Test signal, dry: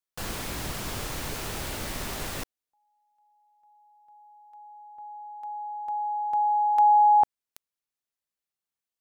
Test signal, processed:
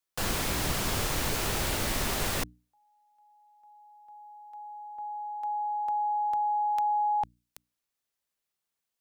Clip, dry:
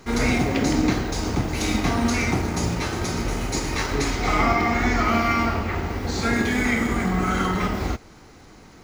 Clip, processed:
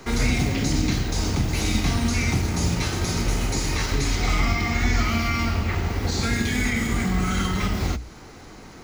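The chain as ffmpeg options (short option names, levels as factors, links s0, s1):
-filter_complex "[0:a]bandreject=f=60:t=h:w=6,bandreject=f=120:t=h:w=6,bandreject=f=180:t=h:w=6,bandreject=f=240:t=h:w=6,bandreject=f=300:t=h:w=6,acrossover=split=190|2400[s0][s1][s2];[s1]acompressor=threshold=0.0282:ratio=8:attack=3.9:release=845:detection=peak[s3];[s2]alimiter=level_in=1.33:limit=0.0631:level=0:latency=1:release=21,volume=0.75[s4];[s0][s3][s4]amix=inputs=3:normalize=0,volume=1.68"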